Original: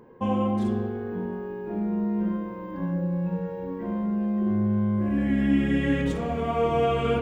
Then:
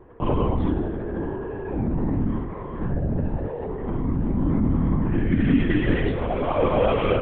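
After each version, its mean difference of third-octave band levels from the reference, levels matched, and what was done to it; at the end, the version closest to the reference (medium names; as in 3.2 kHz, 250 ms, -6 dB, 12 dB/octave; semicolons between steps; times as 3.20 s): 5.0 dB: LPC vocoder at 8 kHz whisper; trim +3 dB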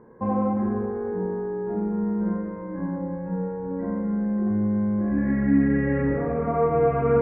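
3.5 dB: steep low-pass 2 kHz 48 dB/octave; Schroeder reverb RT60 1.2 s, combs from 32 ms, DRR 2.5 dB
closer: second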